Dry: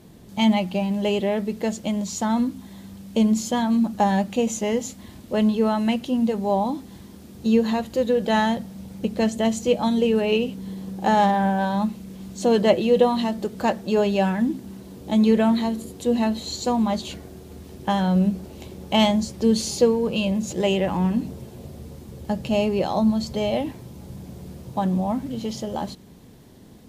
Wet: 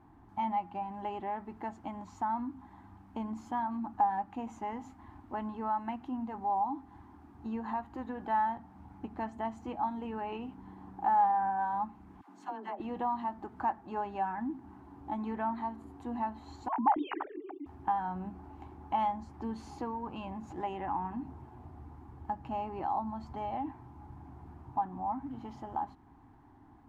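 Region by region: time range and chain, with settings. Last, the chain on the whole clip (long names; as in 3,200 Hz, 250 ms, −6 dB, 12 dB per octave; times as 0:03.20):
0:12.21–0:12.80: all-pass dispersion lows, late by 86 ms, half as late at 610 Hz + downward compressor, threshold −23 dBFS + high-pass filter 220 Hz 24 dB per octave
0:16.68–0:17.66: three sine waves on the formant tracks + parametric band 290 Hz +6 dB 0.29 octaves + level that may fall only so fast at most 27 dB per second
whole clip: drawn EQ curve 100 Hz 0 dB, 200 Hz −13 dB, 290 Hz +4 dB, 530 Hz −19 dB, 810 Hz +11 dB, 1,600 Hz +1 dB, 3,700 Hz −20 dB, 11,000 Hz −25 dB; downward compressor 1.5 to 1, threshold −30 dBFS; level −8 dB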